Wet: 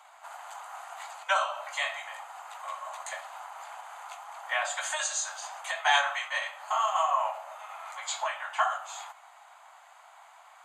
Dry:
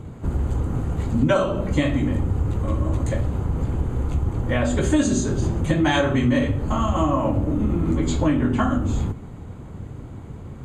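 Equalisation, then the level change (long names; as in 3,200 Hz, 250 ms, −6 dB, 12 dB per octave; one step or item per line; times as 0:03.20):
Butterworth high-pass 680 Hz 72 dB per octave
0.0 dB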